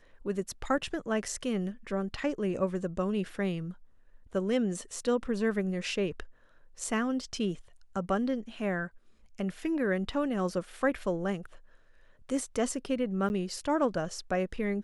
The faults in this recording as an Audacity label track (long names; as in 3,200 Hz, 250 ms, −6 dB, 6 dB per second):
13.290000	13.300000	drop-out 9.9 ms